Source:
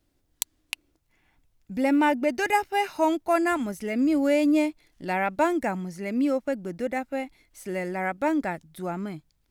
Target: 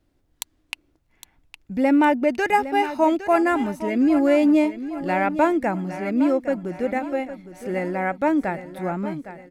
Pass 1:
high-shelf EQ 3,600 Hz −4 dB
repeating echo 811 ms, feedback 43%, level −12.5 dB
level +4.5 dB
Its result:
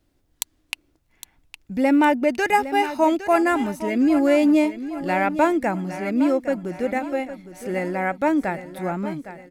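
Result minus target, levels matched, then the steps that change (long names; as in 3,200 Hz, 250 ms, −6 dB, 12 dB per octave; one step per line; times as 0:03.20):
8,000 Hz band +5.0 dB
change: high-shelf EQ 3,600 Hz −10 dB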